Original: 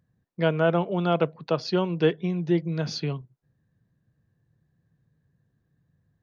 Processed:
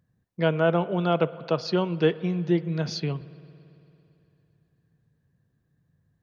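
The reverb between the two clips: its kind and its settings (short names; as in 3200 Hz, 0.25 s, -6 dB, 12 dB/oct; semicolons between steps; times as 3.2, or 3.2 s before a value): spring tank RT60 3 s, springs 56 ms, chirp 75 ms, DRR 17 dB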